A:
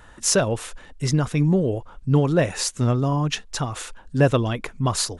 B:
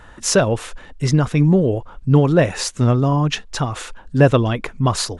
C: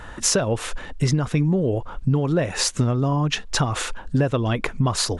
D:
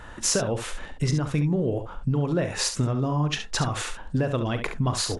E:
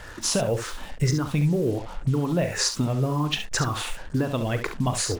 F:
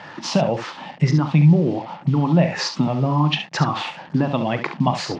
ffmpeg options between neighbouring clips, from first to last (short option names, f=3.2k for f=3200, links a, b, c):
-af "highshelf=f=6.6k:g=-9,volume=5dB"
-af "acompressor=threshold=-22dB:ratio=10,volume=5dB"
-af "aecho=1:1:40|69:0.224|0.355,volume=-4.5dB"
-af "afftfilt=real='re*pow(10,8/40*sin(2*PI*(0.51*log(max(b,1)*sr/1024/100)/log(2)-(-2)*(pts-256)/sr)))':imag='im*pow(10,8/40*sin(2*PI*(0.51*log(max(b,1)*sr/1024/100)/log(2)-(-2)*(pts-256)/sr)))':win_size=1024:overlap=0.75,acrusher=bits=6:mix=0:aa=0.5"
-af "highpass=f=150:w=0.5412,highpass=f=150:w=1.3066,equalizer=f=160:t=q:w=4:g=8,equalizer=f=440:t=q:w=4:g=-9,equalizer=f=840:t=q:w=4:g=7,equalizer=f=1.5k:t=q:w=4:g=-6,equalizer=f=3.8k:t=q:w=4:g=-4,lowpass=f=4.5k:w=0.5412,lowpass=f=4.5k:w=1.3066,volume=6dB"